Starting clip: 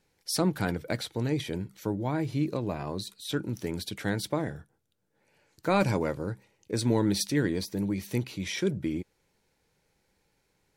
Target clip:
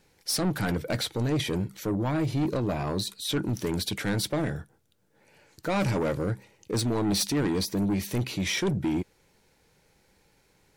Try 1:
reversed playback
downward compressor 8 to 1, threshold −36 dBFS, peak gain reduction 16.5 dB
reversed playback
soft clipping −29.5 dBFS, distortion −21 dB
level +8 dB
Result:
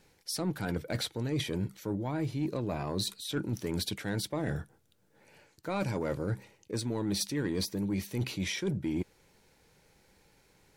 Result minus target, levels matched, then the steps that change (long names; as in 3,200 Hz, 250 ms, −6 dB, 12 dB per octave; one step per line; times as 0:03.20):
downward compressor: peak gain reduction +10.5 dB
change: downward compressor 8 to 1, threshold −24 dBFS, peak gain reduction 6 dB